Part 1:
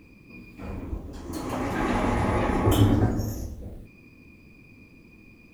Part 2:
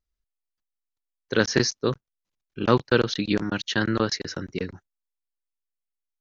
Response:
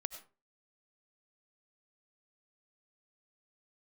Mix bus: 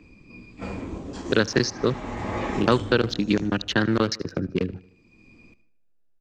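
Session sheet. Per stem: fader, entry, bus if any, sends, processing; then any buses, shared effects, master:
−14.0 dB, 0.00 s, send −6.5 dB, echo send −14.5 dB, elliptic low-pass filter 8,000 Hz, stop band 40 dB; noise gate −40 dBFS, range −9 dB
+1.5 dB, 0.00 s, send −21.5 dB, echo send −22 dB, adaptive Wiener filter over 41 samples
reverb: on, RT60 0.35 s, pre-delay 55 ms
echo: repeating echo 76 ms, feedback 43%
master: multiband upward and downward compressor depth 70%

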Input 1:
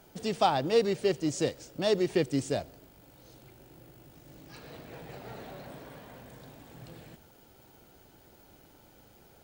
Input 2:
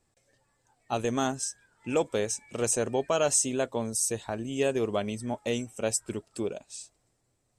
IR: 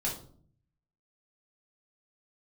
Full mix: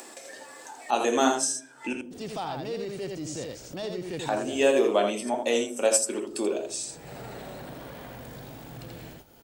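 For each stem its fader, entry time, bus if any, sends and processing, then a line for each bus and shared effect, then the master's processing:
−10.5 dB, 1.95 s, no send, echo send −3.5 dB, noise gate −51 dBFS, range −17 dB; transient designer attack −6 dB, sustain +4 dB
+1.5 dB, 0.00 s, muted 0:01.93–0:04.19, send −4 dB, echo send −3 dB, high-pass filter 290 Hz 24 dB per octave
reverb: on, RT60 0.55 s, pre-delay 3 ms
echo: single-tap delay 83 ms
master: upward compression, threshold −27 dBFS

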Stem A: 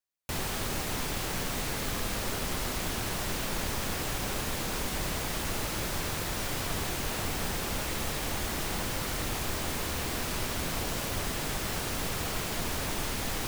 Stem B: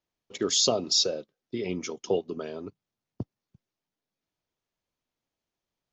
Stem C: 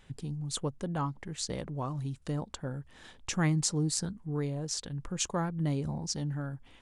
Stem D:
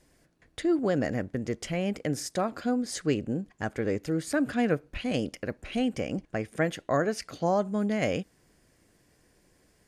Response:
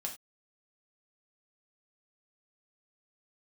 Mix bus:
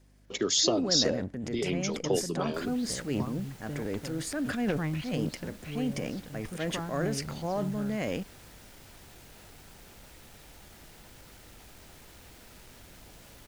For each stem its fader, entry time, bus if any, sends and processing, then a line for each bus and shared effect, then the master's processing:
−18.0 dB, 2.25 s, no send, notch filter 1,100 Hz, Q 7.7; wave folding −28.5 dBFS
−0.5 dB, 0.00 s, no send, multiband upward and downward compressor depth 40%
−5.0 dB, 1.40 s, no send, low-pass filter 3,500 Hz 24 dB per octave
−6.0 dB, 0.00 s, no send, high-pass filter 60 Hz 24 dB per octave; parametric band 240 Hz +3.5 dB 0.43 octaves; transient designer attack −4 dB, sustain +10 dB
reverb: not used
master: mains hum 50 Hz, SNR 27 dB

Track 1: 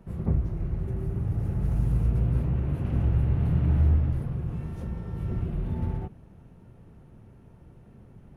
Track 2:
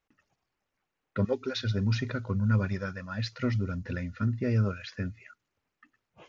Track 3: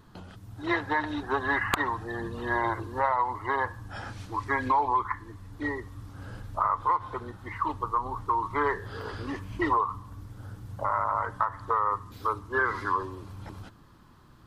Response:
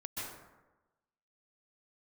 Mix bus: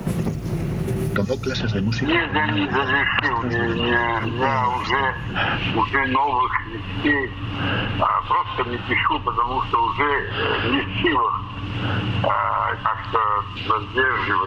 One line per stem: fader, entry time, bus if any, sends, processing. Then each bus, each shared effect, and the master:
−0.5 dB, 0.00 s, no send, downward compressor, threshold −30 dBFS, peak gain reduction 12 dB
−1.5 dB, 0.00 s, no send, high-shelf EQ 4,100 Hz +10 dB
−2.5 dB, 1.45 s, no send, automatic gain control gain up to 11.5 dB; brickwall limiter −9.5 dBFS, peak gain reduction 7 dB; low-pass with resonance 2,800 Hz, resonance Q 15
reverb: not used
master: parametric band 70 Hz −11.5 dB 0.28 octaves; multiband upward and downward compressor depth 100%

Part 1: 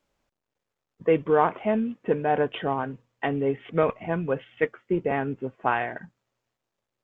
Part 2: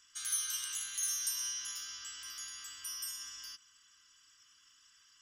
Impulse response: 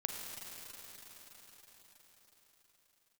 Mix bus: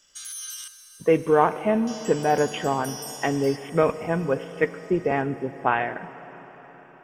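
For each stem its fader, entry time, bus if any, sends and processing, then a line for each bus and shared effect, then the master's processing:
0.0 dB, 0.00 s, send −10 dB, no processing
−5.0 dB, 0.00 s, muted 0:00.68–0:01.87, send −3.5 dB, brickwall limiter −31.5 dBFS, peak gain reduction 10.5 dB; high-shelf EQ 2,400 Hz +6 dB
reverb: on, RT60 5.6 s, pre-delay 36 ms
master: no processing

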